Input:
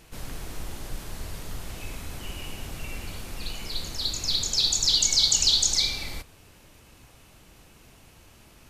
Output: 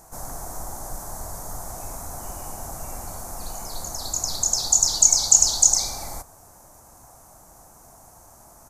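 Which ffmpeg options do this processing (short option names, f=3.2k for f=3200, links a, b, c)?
-af "firequalizer=gain_entry='entry(440,0);entry(710,14);entry(2800,-19);entry(6200,10)':delay=0.05:min_phase=1,volume=-1dB"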